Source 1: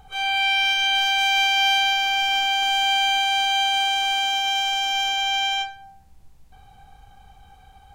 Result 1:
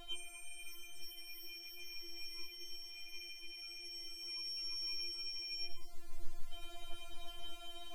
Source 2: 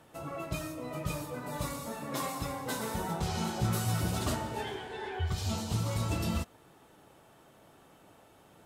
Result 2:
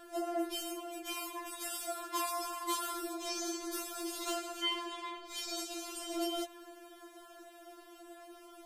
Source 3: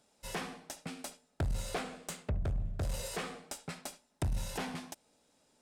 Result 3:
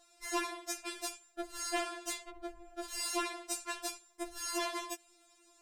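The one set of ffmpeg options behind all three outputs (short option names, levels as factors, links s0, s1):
-af "asoftclip=type=tanh:threshold=0.224,areverse,acompressor=threshold=0.0178:ratio=10,areverse,afftfilt=real='re*4*eq(mod(b,16),0)':imag='im*4*eq(mod(b,16),0)':win_size=2048:overlap=0.75,volume=2.66"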